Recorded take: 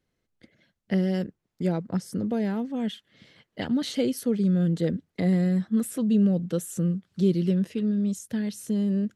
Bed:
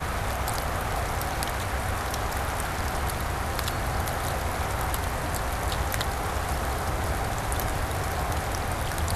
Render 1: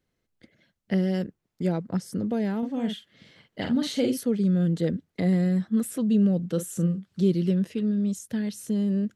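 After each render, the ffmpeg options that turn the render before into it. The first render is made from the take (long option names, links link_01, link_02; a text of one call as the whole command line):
ffmpeg -i in.wav -filter_complex "[0:a]asettb=1/sr,asplit=3[link_01][link_02][link_03];[link_01]atrim=end=2.584[link_04];[link_02]atrim=start=2.58:end=4.21,asetpts=PTS-STARTPTS,afade=type=in:duration=0.004:curve=qsin,afade=type=out:start_time=1.626:duration=0.004:curve=qsin,asplit=2[link_05][link_06];[link_06]adelay=47,volume=-5.5dB[link_07];[link_05][link_07]amix=inputs=2:normalize=0,atrim=end_sample=71883[link_08];[link_03]atrim=start=4.206[link_09];[link_04][link_08]acrossfade=duration=0.004:curve1=hsin:curve2=qsin[link_10];[link_10][link_09]acrossfade=duration=0.004:curve1=qsin:curve2=hsin,asettb=1/sr,asplit=3[link_11][link_12][link_13];[link_11]atrim=end=6.514[link_14];[link_12]atrim=start=6.51:end=7.05,asetpts=PTS-STARTPTS,afade=type=in:duration=0.004:curve=qsin,afade=type=out:start_time=0.536:duration=0.004:curve=qsin,asplit=2[link_15][link_16];[link_16]adelay=42,volume=-10dB[link_17];[link_15][link_17]amix=inputs=2:normalize=0,atrim=end_sample=23814[link_18];[link_13]atrim=start=7.046[link_19];[link_14][link_18]acrossfade=duration=0.004:curve1=hsin:curve2=qsin[link_20];[link_20][link_19]acrossfade=duration=0.004:curve1=qsin:curve2=hsin" out.wav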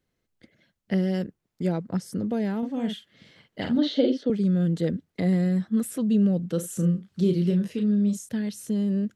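ffmpeg -i in.wav -filter_complex "[0:a]asettb=1/sr,asplit=3[link_01][link_02][link_03];[link_01]atrim=end=3.784[link_04];[link_02]atrim=start=3.78:end=4.3,asetpts=PTS-STARTPTS,afade=type=in:duration=0.004:curve=qsin,afade=type=out:start_time=0.516:duration=0.004:curve=qsin,highpass=frequency=230:width=0.5412,highpass=frequency=230:width=1.3066,equalizer=frequency=300:width_type=q:width=4:gain=7,equalizer=frequency=580:width_type=q:width=4:gain=7,equalizer=frequency=1100:width_type=q:width=4:gain=-7,equalizer=frequency=2400:width_type=q:width=4:gain=-8,equalizer=frequency=3500:width_type=q:width=4:gain=6,lowpass=frequency=4400:width=0.5412,lowpass=frequency=4400:width=1.3066[link_05];[link_03]atrim=start=4.296[link_06];[link_04][link_05]acrossfade=duration=0.004:curve1=hsin:curve2=qsin[link_07];[link_07][link_06]acrossfade=duration=0.004:curve1=qsin:curve2=hsin,asettb=1/sr,asplit=3[link_08][link_09][link_10];[link_08]atrim=end=6.604[link_11];[link_09]atrim=start=6.6:end=8.29,asetpts=PTS-STARTPTS,afade=type=in:duration=0.004:curve=qsin,afade=type=out:start_time=1.686:duration=0.004:curve=qsin,asplit=2[link_12][link_13];[link_13]adelay=34,volume=-6.5dB[link_14];[link_12][link_14]amix=inputs=2:normalize=0,atrim=end_sample=74529[link_15];[link_10]atrim=start=8.286[link_16];[link_11][link_15]acrossfade=duration=0.004:curve1=hsin:curve2=qsin[link_17];[link_17][link_16]acrossfade=duration=0.004:curve1=qsin:curve2=hsin" out.wav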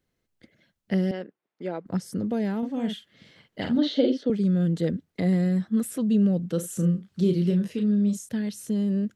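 ffmpeg -i in.wav -filter_complex "[0:a]asettb=1/sr,asplit=3[link_01][link_02][link_03];[link_01]atrim=end=1.114[link_04];[link_02]atrim=start=1.11:end=1.86,asetpts=PTS-STARTPTS,afade=type=in:duration=0.004:curve=qsin,afade=type=out:start_time=0.746:duration=0.004:curve=qsin,highpass=380,lowpass=2900[link_05];[link_03]atrim=start=1.856[link_06];[link_04][link_05]acrossfade=duration=0.004:curve1=hsin:curve2=qsin[link_07];[link_07][link_06]acrossfade=duration=0.004:curve1=qsin:curve2=hsin" out.wav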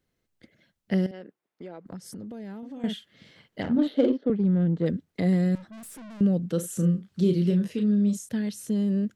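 ffmpeg -i in.wav -filter_complex "[0:a]asettb=1/sr,asplit=3[link_01][link_02][link_03];[link_01]atrim=end=1.064[link_04];[link_02]atrim=start=1.06:end=2.84,asetpts=PTS-STARTPTS,afade=type=in:duration=0.004:curve=qsin,afade=type=out:start_time=1.776:duration=0.004:curve=qsin,acompressor=threshold=-36dB:ratio=8:attack=3.2:release=140:knee=1:detection=peak[link_05];[link_03]atrim=start=2.836[link_06];[link_04][link_05]acrossfade=duration=0.004:curve1=hsin:curve2=qsin[link_07];[link_07][link_06]acrossfade=duration=0.004:curve1=qsin:curve2=hsin,asettb=1/sr,asplit=3[link_08][link_09][link_10];[link_08]atrim=end=3.624[link_11];[link_09]atrim=start=3.62:end=4.86,asetpts=PTS-STARTPTS,afade=type=in:duration=0.004:curve=qsin,afade=type=out:start_time=1.236:duration=0.004:curve=qsin,adynamicsmooth=sensitivity=1.5:basefreq=1300[link_12];[link_10]atrim=start=4.856[link_13];[link_11][link_12]acrossfade=duration=0.004:curve1=hsin:curve2=qsin[link_14];[link_14][link_13]acrossfade=duration=0.004:curve1=qsin:curve2=hsin,asettb=1/sr,asplit=3[link_15][link_16][link_17];[link_15]atrim=end=5.554[link_18];[link_16]atrim=start=5.55:end=6.21,asetpts=PTS-STARTPTS,afade=type=in:duration=0.004:curve=qsin,afade=type=out:start_time=0.656:duration=0.004:curve=qsin,aeval=exprs='(tanh(126*val(0)+0.15)-tanh(0.15))/126':channel_layout=same[link_19];[link_17]atrim=start=6.206[link_20];[link_18][link_19]acrossfade=duration=0.004:curve1=hsin:curve2=qsin[link_21];[link_21][link_20]acrossfade=duration=0.004:curve1=qsin:curve2=hsin" out.wav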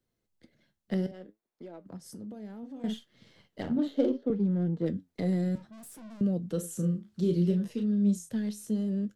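ffmpeg -i in.wav -filter_complex "[0:a]acrossover=split=160|1300|3400[link_01][link_02][link_03][link_04];[link_03]aeval=exprs='max(val(0),0)':channel_layout=same[link_05];[link_01][link_02][link_05][link_04]amix=inputs=4:normalize=0,flanger=delay=8.3:depth=6.1:regen=67:speed=0.64:shape=sinusoidal" out.wav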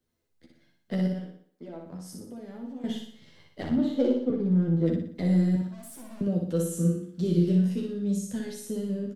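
ffmpeg -i in.wav -filter_complex "[0:a]asplit=2[link_01][link_02];[link_02]adelay=12,volume=-3dB[link_03];[link_01][link_03]amix=inputs=2:normalize=0,aecho=1:1:60|120|180|240|300|360:0.631|0.303|0.145|0.0698|0.0335|0.0161" out.wav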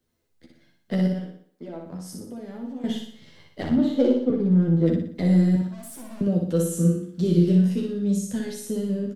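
ffmpeg -i in.wav -af "volume=4.5dB" out.wav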